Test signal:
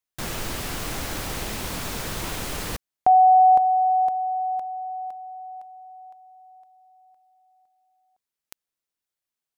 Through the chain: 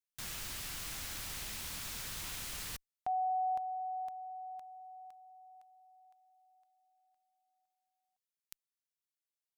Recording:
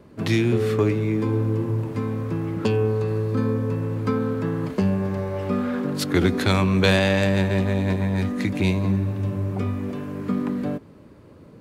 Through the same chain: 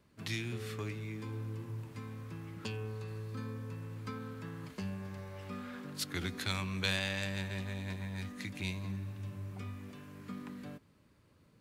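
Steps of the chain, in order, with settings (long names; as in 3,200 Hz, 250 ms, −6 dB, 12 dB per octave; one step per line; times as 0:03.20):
guitar amp tone stack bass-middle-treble 5-5-5
level −2 dB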